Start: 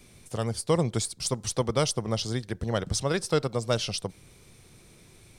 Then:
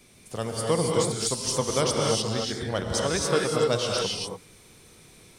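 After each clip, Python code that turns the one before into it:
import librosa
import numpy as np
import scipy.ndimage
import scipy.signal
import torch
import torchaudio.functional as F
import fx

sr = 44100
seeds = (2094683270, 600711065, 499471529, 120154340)

y = fx.low_shelf(x, sr, hz=140.0, db=-8.5)
y = fx.rev_gated(y, sr, seeds[0], gate_ms=310, shape='rising', drr_db=-1.5)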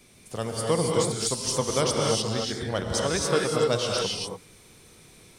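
y = x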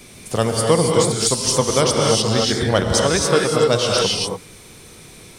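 y = fx.rider(x, sr, range_db=4, speed_s=0.5)
y = y * 10.0 ** (9.0 / 20.0)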